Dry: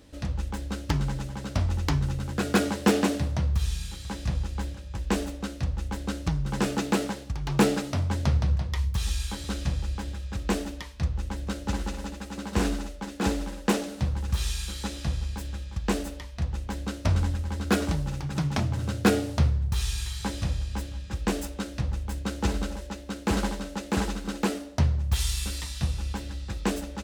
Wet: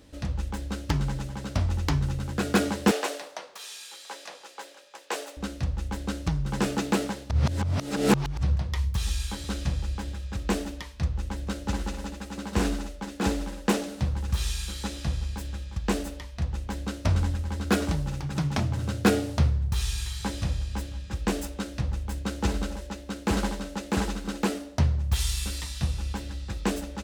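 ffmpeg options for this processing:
ffmpeg -i in.wav -filter_complex "[0:a]asettb=1/sr,asplit=3[link_01][link_02][link_03];[link_01]atrim=end=2.914[link_04];[link_02]atrim=start=2.91:end=5.37,asetpts=PTS-STARTPTS,afade=type=in:duration=0.004:curve=qsin,afade=type=out:start_time=2.456:duration=0.004:curve=qsin,highpass=frequency=460:width=0.5412,highpass=frequency=460:width=1.3066[link_05];[link_03]atrim=start=5.366[link_06];[link_04][link_05]acrossfade=duration=0.004:curve1=hsin:curve2=qsin[link_07];[link_07][link_06]acrossfade=duration=0.004:curve1=qsin:curve2=hsin,asplit=3[link_08][link_09][link_10];[link_08]atrim=end=7.302[link_11];[link_09]atrim=start=7.298:end=8.432,asetpts=PTS-STARTPTS,areverse[link_12];[link_10]atrim=start=8.428[link_13];[link_11][link_12]acrossfade=duration=0.004:curve1=hsin:curve2=hsin[link_14];[link_14][link_13]acrossfade=duration=0.004:curve1=hsin:curve2=hsin" out.wav

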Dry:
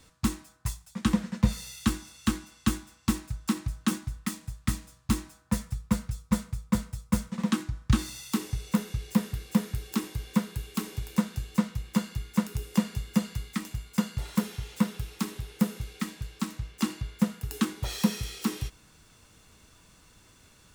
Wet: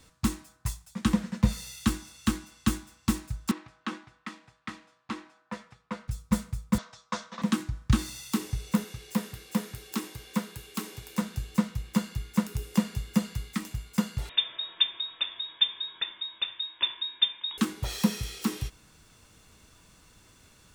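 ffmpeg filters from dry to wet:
ffmpeg -i in.wav -filter_complex "[0:a]asettb=1/sr,asplit=3[link_01][link_02][link_03];[link_01]atrim=end=3.514[link_04];[link_02]atrim=start=3.51:end=6.08,asetpts=PTS-STARTPTS,afade=type=in:duration=0.004:curve=qsin,afade=type=out:start_time=2.566:duration=0.004:curve=qsin,highpass=400,lowpass=2900[link_05];[link_03]atrim=start=6.076[link_06];[link_04][link_05]acrossfade=duration=0.004:curve1=hsin:curve2=qsin[link_07];[link_07][link_06]acrossfade=duration=0.004:curve1=qsin:curve2=hsin,asettb=1/sr,asplit=3[link_08][link_09][link_10];[link_08]atrim=end=6.784[link_11];[link_09]atrim=start=6.78:end=7.42,asetpts=PTS-STARTPTS,afade=type=in:duration=0.004:curve=qsin,afade=type=out:start_time=0.636:duration=0.004:curve=qsin,highpass=440,equalizer=frequency=670:width_type=q:width=4:gain=7,equalizer=frequency=1100:width_type=q:width=4:gain=8,equalizer=frequency=1600:width_type=q:width=4:gain=5,equalizer=frequency=3700:width_type=q:width=4:gain=7,equalizer=frequency=5800:width_type=q:width=4:gain=4,lowpass=frequency=6200:width=0.5412,lowpass=frequency=6200:width=1.3066[link_12];[link_10]atrim=start=7.416[link_13];[link_11][link_12]acrossfade=duration=0.004:curve1=hsin:curve2=qsin[link_14];[link_14][link_13]acrossfade=duration=0.004:curve1=qsin:curve2=hsin,asettb=1/sr,asplit=3[link_15][link_16][link_17];[link_15]atrim=end=8.844[link_18];[link_16]atrim=start=8.84:end=11.22,asetpts=PTS-STARTPTS,afade=type=in:duration=0.004:curve=qsin,afade=type=out:start_time=2.376:duration=0.004:curve=qsin,highpass=frequency=270:poles=1[link_19];[link_17]atrim=start=11.216[link_20];[link_18][link_19]acrossfade=duration=0.004:curve1=hsin:curve2=qsin[link_21];[link_21][link_20]acrossfade=duration=0.004:curve1=qsin:curve2=hsin,asettb=1/sr,asplit=3[link_22][link_23][link_24];[link_22]atrim=end=14.294[link_25];[link_23]atrim=start=14.29:end=17.58,asetpts=PTS-STARTPTS,afade=type=in:duration=0.004:curve=qsin,afade=type=out:start_time=3.286:duration=0.004:curve=qsin,lowpass=frequency=3200:width_type=q:width=0.5098,lowpass=frequency=3200:width_type=q:width=0.6013,lowpass=frequency=3200:width_type=q:width=0.9,lowpass=frequency=3200:width_type=q:width=2.563,afreqshift=-3800[link_26];[link_24]atrim=start=17.576[link_27];[link_25][link_26]acrossfade=duration=0.004:curve1=hsin:curve2=qsin[link_28];[link_28][link_27]acrossfade=duration=0.004:curve1=qsin:curve2=hsin" out.wav

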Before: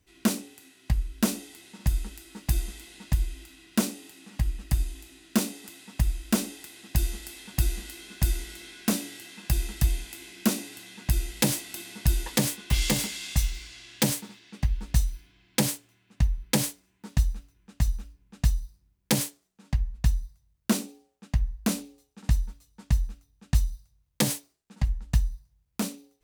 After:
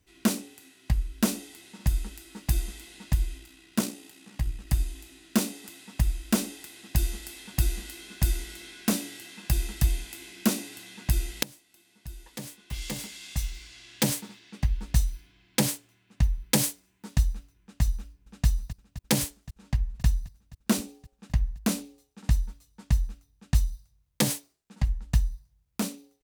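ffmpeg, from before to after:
ffmpeg -i in.wav -filter_complex "[0:a]asplit=3[link_01][link_02][link_03];[link_01]afade=type=out:start_time=3.37:duration=0.02[link_04];[link_02]tremolo=f=61:d=0.462,afade=type=in:start_time=3.37:duration=0.02,afade=type=out:start_time=4.66:duration=0.02[link_05];[link_03]afade=type=in:start_time=4.66:duration=0.02[link_06];[link_04][link_05][link_06]amix=inputs=3:normalize=0,asettb=1/sr,asplit=3[link_07][link_08][link_09];[link_07]atrim=end=16.234[link_10];[link_08]atrim=start=16.23:end=17.18,asetpts=PTS-STARTPTS,afade=type=in:duration=0.004:curve=qsin,afade=type=out:start_time=0.946:duration=0.004:curve=qsin,highshelf=frequency=5300:gain=4[link_11];[link_09]atrim=start=17.176[link_12];[link_10][link_11]acrossfade=duration=0.004:curve1=hsin:curve2=qsin[link_13];[link_13][link_12]acrossfade=duration=0.004:curve1=qsin:curve2=hsin,asplit=2[link_14][link_15];[link_15]afade=type=in:start_time=18:duration=0.01,afade=type=out:start_time=18.46:duration=0.01,aecho=0:1:260|520|780|1040|1300|1560|1820|2080|2340|2600|2860|3120:0.211349|0.179647|0.1527|0.129795|0.110325|0.0937766|0.0797101|0.0677536|0.0575906|0.048952|0.0416092|0.0353678[link_16];[link_14][link_16]amix=inputs=2:normalize=0,asplit=2[link_17][link_18];[link_17]atrim=end=11.43,asetpts=PTS-STARTPTS,afade=type=out:start_time=11.426:duration=0.004:curve=hsin:silence=0.0668344[link_19];[link_18]atrim=start=11.43,asetpts=PTS-STARTPTS,afade=type=in:duration=2.76:curve=qua:silence=0.0668344[link_20];[link_19][link_20]concat=n=2:v=0:a=1" out.wav

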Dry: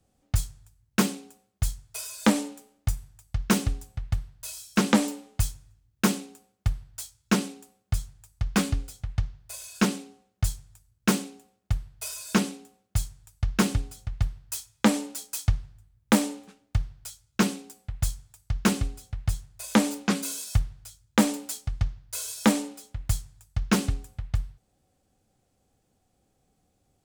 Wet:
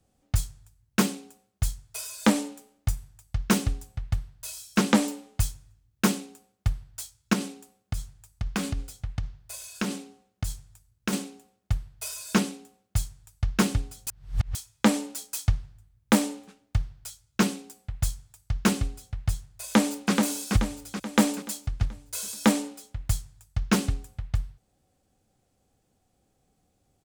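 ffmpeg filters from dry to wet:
ffmpeg -i in.wav -filter_complex "[0:a]asettb=1/sr,asplit=3[link_01][link_02][link_03];[link_01]atrim=end=7.334[link_04];[link_02]atrim=start=7.33:end=11.13,asetpts=PTS-STARTPTS,afade=type=in:duration=0.004:curve=qsin,afade=type=out:start_time=3.796:duration=0.004:curve=qsin,acompressor=threshold=-23dB:ratio=6:attack=3.2:release=140:knee=1:detection=peak[link_05];[link_03]atrim=start=11.126[link_06];[link_04][link_05]acrossfade=duration=0.004:curve1=hsin:curve2=qsin[link_07];[link_07][link_06]acrossfade=duration=0.004:curve1=qsin:curve2=hsin,asplit=2[link_08][link_09];[link_09]afade=type=in:start_time=19.64:duration=0.01,afade=type=out:start_time=20.13:duration=0.01,aecho=0:1:430|860|1290|1720|2150|2580:0.630957|0.315479|0.157739|0.0788697|0.0394348|0.0197174[link_10];[link_08][link_10]amix=inputs=2:normalize=0,asplit=3[link_11][link_12][link_13];[link_11]atrim=end=14.072[link_14];[link_12]atrim=start=14.068:end=14.552,asetpts=PTS-STARTPTS,areverse[link_15];[link_13]atrim=start=14.548[link_16];[link_14][link_15]acrossfade=duration=0.004:curve1=hsin:curve2=hsin[link_17];[link_17][link_16]acrossfade=duration=0.004:curve1=hsin:curve2=hsin" out.wav

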